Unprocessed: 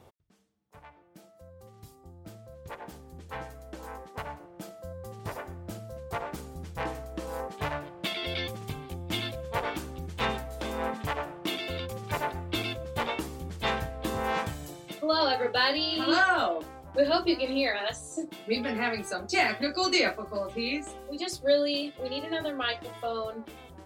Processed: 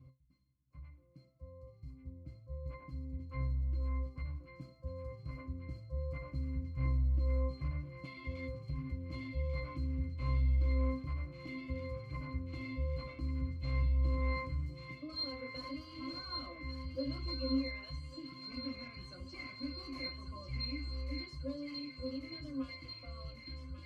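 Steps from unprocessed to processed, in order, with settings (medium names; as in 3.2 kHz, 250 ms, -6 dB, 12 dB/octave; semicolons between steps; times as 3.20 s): amplifier tone stack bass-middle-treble 6-0-2; in parallel at -1 dB: compression, threshold -55 dBFS, peak gain reduction 15.5 dB; on the sum: sine folder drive 13 dB, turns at -28 dBFS; pitch-class resonator C, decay 0.22 s; on a send: feedback echo behind a high-pass 1141 ms, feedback 74%, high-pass 1.5 kHz, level -5 dB; on the sum: trim +5 dB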